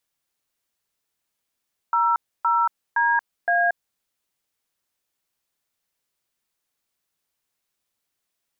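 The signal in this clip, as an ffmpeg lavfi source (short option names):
-f lavfi -i "aevalsrc='0.106*clip(min(mod(t,0.516),0.23-mod(t,0.516))/0.002,0,1)*(eq(floor(t/0.516),0)*(sin(2*PI*941*mod(t,0.516))+sin(2*PI*1336*mod(t,0.516)))+eq(floor(t/0.516),1)*(sin(2*PI*941*mod(t,0.516))+sin(2*PI*1336*mod(t,0.516)))+eq(floor(t/0.516),2)*(sin(2*PI*941*mod(t,0.516))+sin(2*PI*1633*mod(t,0.516)))+eq(floor(t/0.516),3)*(sin(2*PI*697*mod(t,0.516))+sin(2*PI*1633*mod(t,0.516))))':d=2.064:s=44100"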